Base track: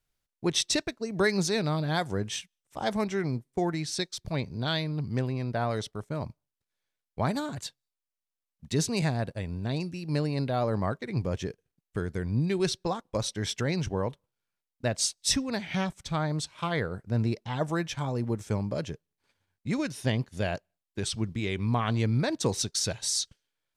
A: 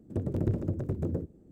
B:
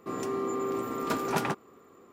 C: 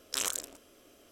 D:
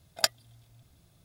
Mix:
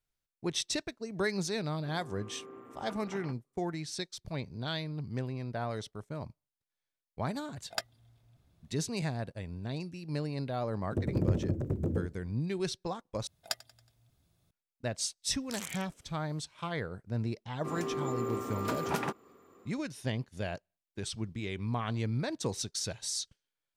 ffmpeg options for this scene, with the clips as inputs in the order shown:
ffmpeg -i bed.wav -i cue0.wav -i cue1.wav -i cue2.wav -i cue3.wav -filter_complex "[2:a]asplit=2[link_01][link_02];[4:a]asplit=2[link_03][link_04];[0:a]volume=-6.5dB[link_05];[link_01]afwtdn=0.01[link_06];[link_03]highshelf=frequency=4200:gain=-10.5[link_07];[link_04]aecho=1:1:92|184|276|368:0.0891|0.0446|0.0223|0.0111[link_08];[link_05]asplit=2[link_09][link_10];[link_09]atrim=end=13.274[link_11];[link_08]atrim=end=1.24,asetpts=PTS-STARTPTS,volume=-10dB[link_12];[link_10]atrim=start=14.506[link_13];[link_06]atrim=end=2.12,asetpts=PTS-STARTPTS,volume=-17.5dB,afade=type=in:duration=0.004:curve=hsin,afade=type=out:start_time=2.116:duration=0.004:curve=hsin,adelay=1790[link_14];[link_07]atrim=end=1.24,asetpts=PTS-STARTPTS,volume=-5.5dB,afade=type=in:duration=0.004:curve=hsin,afade=type=out:start_time=1.236:duration=0.004:curve=hsin,adelay=332514S[link_15];[1:a]atrim=end=1.51,asetpts=PTS-STARTPTS,volume=-0.5dB,afade=type=in:duration=0.004:curve=hsin,afade=type=out:start_time=1.506:duration=0.004:curve=hsin,adelay=10810[link_16];[3:a]atrim=end=1.11,asetpts=PTS-STARTPTS,volume=-10dB,afade=type=in:duration=0.1,afade=type=out:start_time=1.01:duration=0.1,adelay=15370[link_17];[link_02]atrim=end=2.12,asetpts=PTS-STARTPTS,volume=-4dB,afade=type=in:duration=0.004:curve=hsin,afade=type=out:start_time=2.116:duration=0.004:curve=hsin,adelay=17580[link_18];[link_11][link_12]acrossfade=duration=0.004:curve1=hsin:curve2=hsin[link_19];[link_19][link_13]acrossfade=duration=0.004:curve1=hsin:curve2=hsin[link_20];[link_20][link_14][link_15][link_16][link_17][link_18]amix=inputs=6:normalize=0" out.wav

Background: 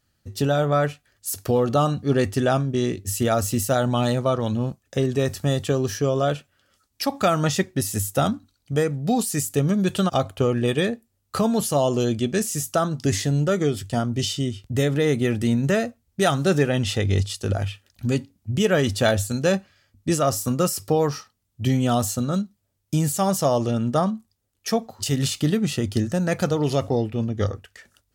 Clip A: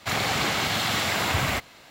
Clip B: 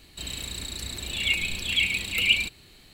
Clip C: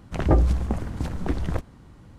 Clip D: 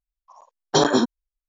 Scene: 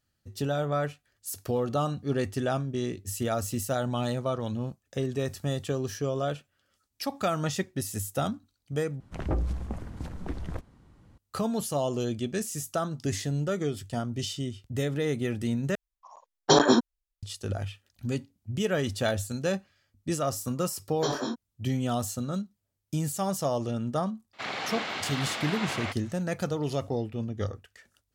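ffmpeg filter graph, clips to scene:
ffmpeg -i bed.wav -i cue0.wav -i cue1.wav -i cue2.wav -i cue3.wav -filter_complex "[4:a]asplit=2[link_01][link_02];[0:a]volume=-8dB[link_03];[3:a]asoftclip=type=tanh:threshold=-11dB[link_04];[link_02]asplit=2[link_05][link_06];[link_06]adelay=22,volume=-3.5dB[link_07];[link_05][link_07]amix=inputs=2:normalize=0[link_08];[1:a]highpass=230,lowpass=4400[link_09];[link_03]asplit=3[link_10][link_11][link_12];[link_10]atrim=end=9.004[link_13];[link_04]atrim=end=2.18,asetpts=PTS-STARTPTS,volume=-8.5dB[link_14];[link_11]atrim=start=11.176:end=15.754[link_15];[link_01]atrim=end=1.48,asetpts=PTS-STARTPTS,volume=-1.5dB[link_16];[link_12]atrim=start=17.226[link_17];[link_08]atrim=end=1.48,asetpts=PTS-STARTPTS,volume=-14dB,afade=type=in:duration=0.004:curve=hsin,afade=type=out:start_time=1.476:duration=0.004:curve=hsin,adelay=20280[link_18];[link_09]atrim=end=1.9,asetpts=PTS-STARTPTS,volume=-7.5dB,afade=type=in:duration=0.004:curve=hsin,afade=type=out:start_time=1.896:duration=0.004:curve=hsin,adelay=24330[link_19];[link_13][link_14]acrossfade=duration=0.004:curve1=hsin:curve2=hsin[link_20];[link_20][link_15]acrossfade=duration=0.004:curve1=hsin:curve2=hsin[link_21];[link_21][link_16]acrossfade=duration=0.004:curve1=hsin:curve2=hsin[link_22];[link_22][link_17]acrossfade=duration=0.004:curve1=hsin:curve2=hsin[link_23];[link_23][link_18][link_19]amix=inputs=3:normalize=0" out.wav

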